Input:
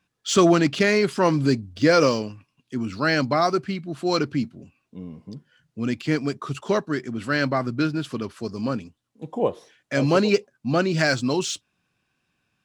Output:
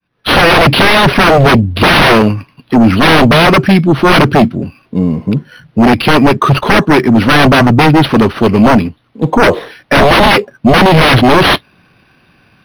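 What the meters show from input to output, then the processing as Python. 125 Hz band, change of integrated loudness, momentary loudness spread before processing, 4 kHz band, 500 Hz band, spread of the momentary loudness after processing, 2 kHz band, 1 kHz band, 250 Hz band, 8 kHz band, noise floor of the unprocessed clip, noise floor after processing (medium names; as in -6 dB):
+17.0 dB, +14.5 dB, 15 LU, +18.0 dB, +12.0 dB, 9 LU, +17.0 dB, +18.0 dB, +14.5 dB, +7.0 dB, -76 dBFS, -52 dBFS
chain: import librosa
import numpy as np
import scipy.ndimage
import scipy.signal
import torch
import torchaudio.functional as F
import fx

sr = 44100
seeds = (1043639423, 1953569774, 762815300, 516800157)

y = fx.fade_in_head(x, sr, length_s=0.53)
y = fx.fold_sine(y, sr, drive_db=19, ceiling_db=-5.0)
y = np.interp(np.arange(len(y)), np.arange(len(y))[::6], y[::6])
y = y * librosa.db_to_amplitude(3.0)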